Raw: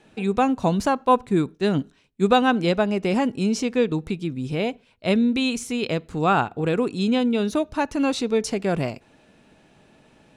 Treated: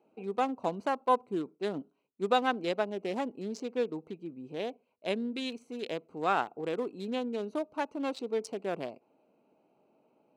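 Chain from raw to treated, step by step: local Wiener filter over 25 samples; high-pass 350 Hz 12 dB/octave; trim -7.5 dB

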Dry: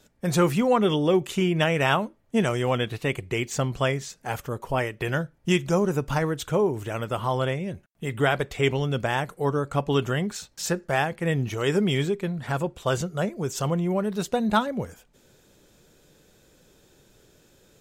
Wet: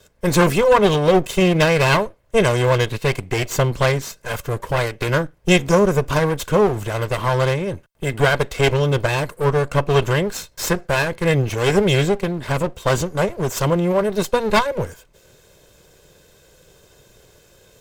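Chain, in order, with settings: comb filter that takes the minimum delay 1.9 ms; trim +8 dB

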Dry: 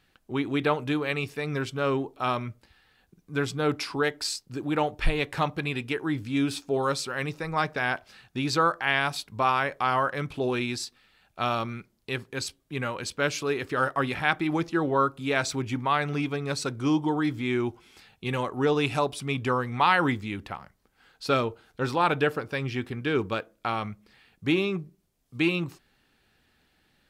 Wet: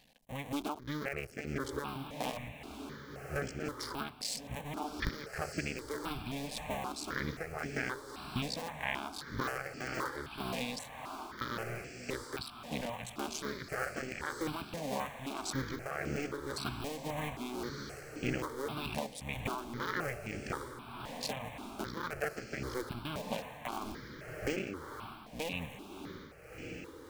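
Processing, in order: cycle switcher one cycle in 2, muted; bass shelf 71 Hz -6.5 dB; compression 4:1, threshold -39 dBFS, peak gain reduction 17.5 dB; echo that smears into a reverb 1327 ms, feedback 41%, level -6.5 dB; tremolo 1.8 Hz, depth 42%; stepped phaser 3.8 Hz 360–3700 Hz; trim +7.5 dB

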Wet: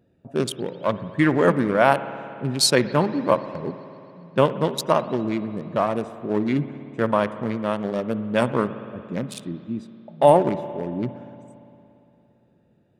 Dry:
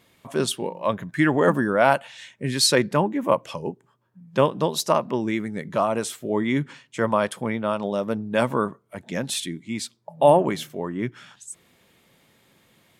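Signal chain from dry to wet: local Wiener filter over 41 samples; spring tank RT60 2.9 s, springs 57 ms, chirp 75 ms, DRR 12.5 dB; trim +1.5 dB

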